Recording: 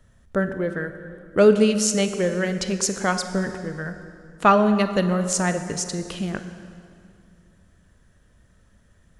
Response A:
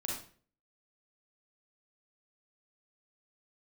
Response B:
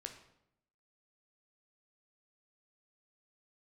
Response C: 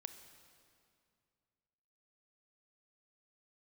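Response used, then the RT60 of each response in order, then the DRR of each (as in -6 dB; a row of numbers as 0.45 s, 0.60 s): C; 0.45 s, 0.80 s, 2.4 s; -3.0 dB, 4.0 dB, 8.5 dB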